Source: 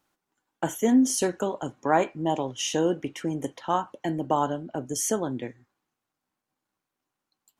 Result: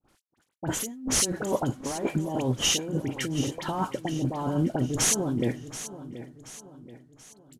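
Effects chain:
variable-slope delta modulation 64 kbit/s
gain into a clipping stage and back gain 14 dB
low-shelf EQ 400 Hz +10.5 dB
compressor whose output falls as the input rises −29 dBFS, ratio −1
noise gate with hold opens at −54 dBFS
all-pass dispersion highs, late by 50 ms, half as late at 1,700 Hz
on a send: repeating echo 730 ms, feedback 45%, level −14 dB

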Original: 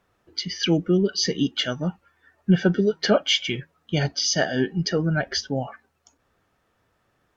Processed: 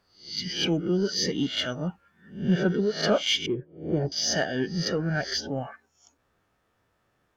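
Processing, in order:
peak hold with a rise ahead of every peak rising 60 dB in 0.43 s
0:03.46–0:04.12: drawn EQ curve 230 Hz 0 dB, 370 Hz +9 dB, 2,700 Hz −24 dB
in parallel at −11.5 dB: soft clipping −22 dBFS, distortion −8 dB
on the sum: level −6.5 dB

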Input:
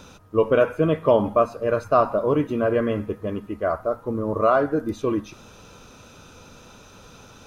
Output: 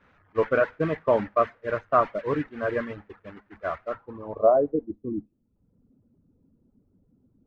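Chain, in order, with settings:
linear delta modulator 64 kbit/s, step −24.5 dBFS
downward expander −17 dBFS
low-pass filter sweep 1,800 Hz → 260 Hz, 0:03.84–0:05.08
reverb reduction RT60 0.8 s
level −4.5 dB

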